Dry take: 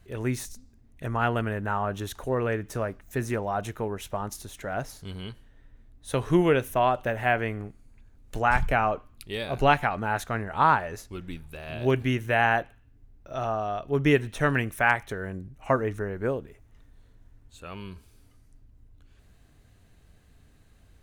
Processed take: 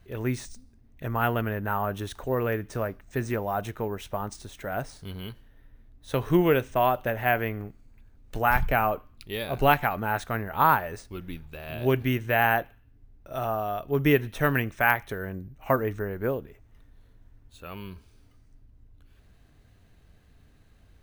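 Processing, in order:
bad sample-rate conversion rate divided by 3×, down filtered, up hold

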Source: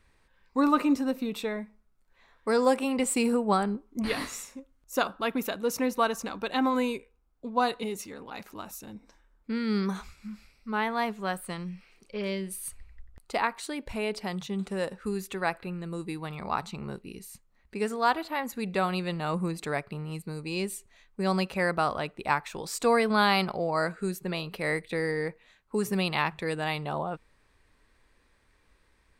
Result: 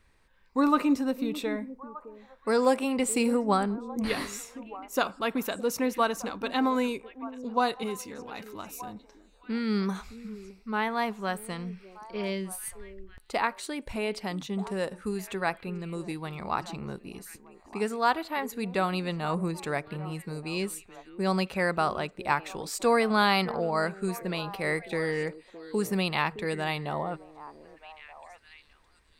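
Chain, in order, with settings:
echo through a band-pass that steps 613 ms, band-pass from 330 Hz, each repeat 1.4 octaves, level −11.5 dB

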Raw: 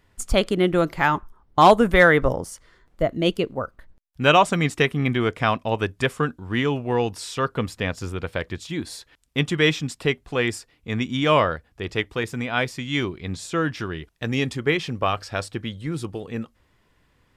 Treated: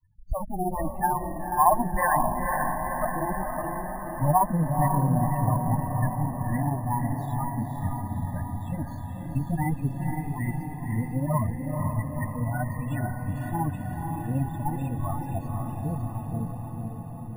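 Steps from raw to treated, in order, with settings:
lower of the sound and its delayed copy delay 1.1 ms
treble cut that deepens with the level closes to 1,500 Hz, closed at −18.5 dBFS
granular cloud 100 ms, grains 16 per second, spray 25 ms, pitch spread up and down by 0 semitones
spectral peaks only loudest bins 8
high-frequency loss of the air 330 metres
feedback delay with all-pass diffusion 506 ms, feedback 67%, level −3.5 dB
bad sample-rate conversion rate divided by 4×, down filtered, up hold
level +1 dB

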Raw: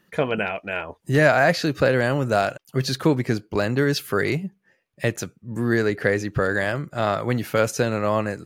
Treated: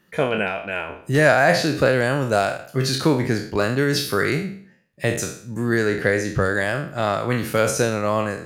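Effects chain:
peak hold with a decay on every bin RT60 0.53 s
dynamic equaliser 9,100 Hz, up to +5 dB, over −47 dBFS, Q 1.4

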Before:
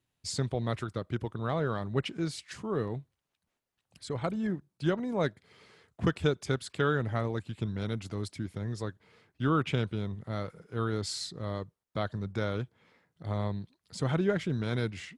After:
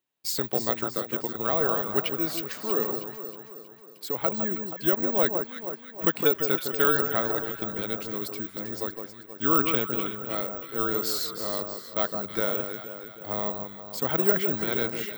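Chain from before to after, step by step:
noise gate −56 dBFS, range −7 dB
high-pass filter 300 Hz 12 dB per octave
on a send: delay that swaps between a low-pass and a high-pass 159 ms, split 1,400 Hz, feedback 71%, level −6 dB
on the sum: bad sample-rate conversion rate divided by 2×, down filtered, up zero stuff
level +4.5 dB

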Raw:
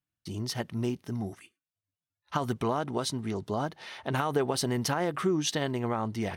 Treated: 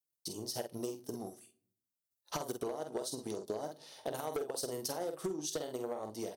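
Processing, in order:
on a send at −12 dB: convolution reverb RT60 0.50 s, pre-delay 6 ms
on the sum: automatic gain control gain up to 3.5 dB
drawn EQ curve 220 Hz 0 dB, 510 Hz +5 dB, 1,200 Hz −15 dB, 2,200 Hz −24 dB, 4,500 Hz −13 dB
transient designer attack +9 dB, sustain −5 dB
first difference
double-tracking delay 47 ms −7 dB
gain into a clipping stage and back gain 36 dB
downward compressor, threshold −48 dBFS, peak gain reduction 10 dB
level +13.5 dB

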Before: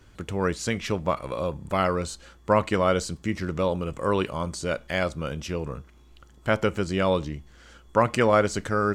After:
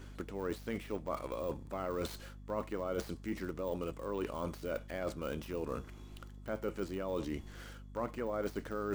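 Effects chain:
gap after every zero crossing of 0.065 ms
de-essing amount 85%
low shelf with overshoot 200 Hz −7.5 dB, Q 1.5
reversed playback
downward compressor 6 to 1, threshold −38 dBFS, peak gain reduction 19.5 dB
reversed playback
mains hum 50 Hz, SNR 11 dB
level +2.5 dB

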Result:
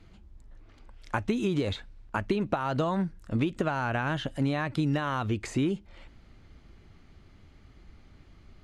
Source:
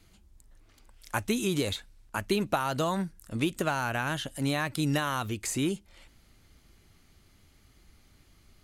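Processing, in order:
downward compressor 10 to 1, threshold −29 dBFS, peak gain reduction 9 dB
head-to-tape spacing loss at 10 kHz 23 dB
level +7 dB

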